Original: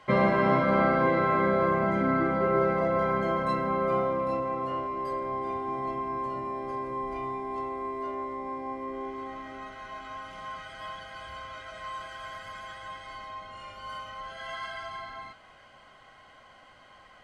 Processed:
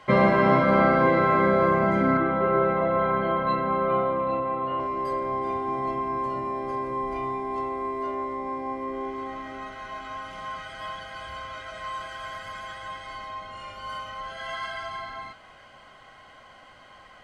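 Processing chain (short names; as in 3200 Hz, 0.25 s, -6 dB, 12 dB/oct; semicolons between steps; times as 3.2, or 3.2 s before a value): 2.17–4.8 rippled Chebyshev low-pass 4100 Hz, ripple 3 dB; gain +4 dB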